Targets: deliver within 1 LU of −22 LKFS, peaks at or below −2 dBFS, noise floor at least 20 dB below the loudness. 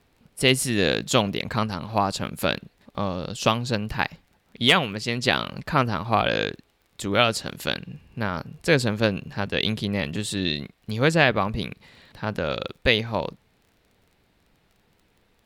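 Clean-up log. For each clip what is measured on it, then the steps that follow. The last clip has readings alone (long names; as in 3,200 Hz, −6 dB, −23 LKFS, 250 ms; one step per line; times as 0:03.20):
crackle rate 27 per second; integrated loudness −24.5 LKFS; sample peak −1.5 dBFS; target loudness −22.0 LKFS
→ click removal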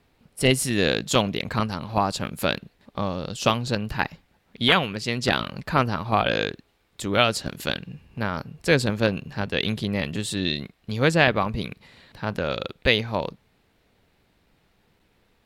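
crackle rate 0.52 per second; integrated loudness −24.5 LKFS; sample peak −2.0 dBFS; target loudness −22.0 LKFS
→ level +2.5 dB
brickwall limiter −2 dBFS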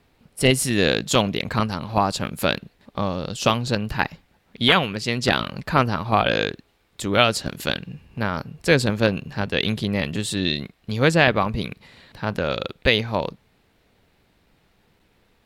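integrated loudness −22.0 LKFS; sample peak −2.0 dBFS; background noise floor −63 dBFS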